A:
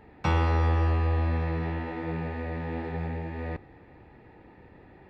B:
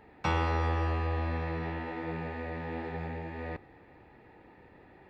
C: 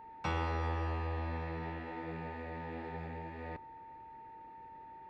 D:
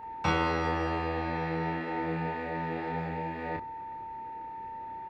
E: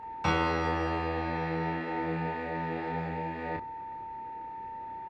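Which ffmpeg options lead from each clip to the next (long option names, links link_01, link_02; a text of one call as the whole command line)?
ffmpeg -i in.wav -af "lowshelf=frequency=270:gain=-6.5,volume=-1dB" out.wav
ffmpeg -i in.wav -af "aeval=exprs='val(0)+0.00708*sin(2*PI*900*n/s)':channel_layout=same,volume=-6dB" out.wav
ffmpeg -i in.wav -filter_complex "[0:a]asplit=2[link_01][link_02];[link_02]adelay=31,volume=-3dB[link_03];[link_01][link_03]amix=inputs=2:normalize=0,volume=7dB" out.wav
ffmpeg -i in.wav -af "aresample=22050,aresample=44100" out.wav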